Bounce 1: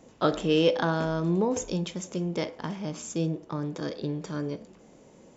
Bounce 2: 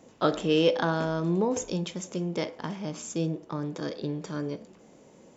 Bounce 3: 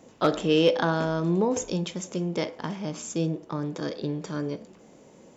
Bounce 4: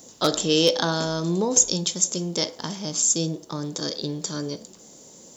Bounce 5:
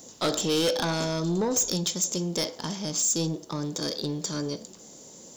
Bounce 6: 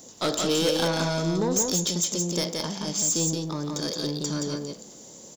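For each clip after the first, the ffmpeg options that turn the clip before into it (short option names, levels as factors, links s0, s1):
-af "lowshelf=f=61:g=-10"
-af "asoftclip=type=hard:threshold=0.237,volume=1.26"
-af "aexciter=amount=7.8:drive=3.3:freq=3600"
-af "asoftclip=type=tanh:threshold=0.1"
-af "aecho=1:1:173:0.668"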